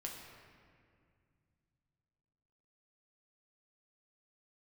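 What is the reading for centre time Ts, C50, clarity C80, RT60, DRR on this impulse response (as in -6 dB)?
76 ms, 3.0 dB, 4.0 dB, 2.2 s, -1.5 dB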